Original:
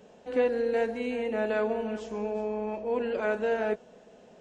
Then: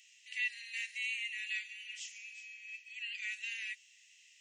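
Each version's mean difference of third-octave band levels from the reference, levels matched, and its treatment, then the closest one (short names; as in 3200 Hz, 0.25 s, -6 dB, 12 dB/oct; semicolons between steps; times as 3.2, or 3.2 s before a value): 19.5 dB: rippled Chebyshev high-pass 1900 Hz, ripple 6 dB; gain +9 dB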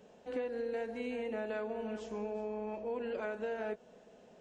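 2.0 dB: compressor, threshold -29 dBFS, peak gain reduction 8.5 dB; gain -5 dB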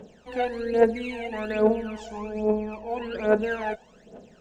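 3.5 dB: phaser 1.2 Hz, delay 1.4 ms, feedback 77%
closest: second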